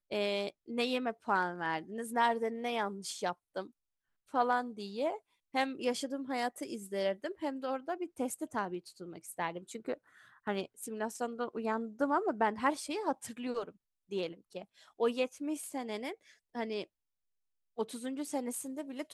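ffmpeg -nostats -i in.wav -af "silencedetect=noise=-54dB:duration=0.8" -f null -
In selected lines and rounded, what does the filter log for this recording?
silence_start: 16.85
silence_end: 17.77 | silence_duration: 0.92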